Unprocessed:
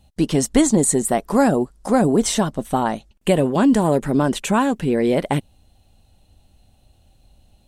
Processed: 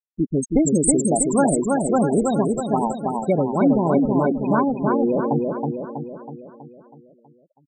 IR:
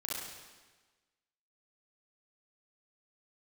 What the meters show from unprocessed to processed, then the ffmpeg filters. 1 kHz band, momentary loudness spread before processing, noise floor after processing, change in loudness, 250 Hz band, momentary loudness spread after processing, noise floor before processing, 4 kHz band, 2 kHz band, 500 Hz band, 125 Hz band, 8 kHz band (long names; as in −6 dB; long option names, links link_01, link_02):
−0.5 dB, 6 LU, −60 dBFS, −1.0 dB, −1.0 dB, 12 LU, −58 dBFS, below −15 dB, −6.5 dB, −0.5 dB, −1.5 dB, −1.0 dB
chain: -af "afftfilt=real='re*gte(hypot(re,im),0.282)':imag='im*gte(hypot(re,im),0.282)':win_size=1024:overlap=0.75,tiltshelf=frequency=1500:gain=-3,aecho=1:1:323|646|969|1292|1615|1938|2261:0.708|0.375|0.199|0.105|0.0559|0.0296|0.0157"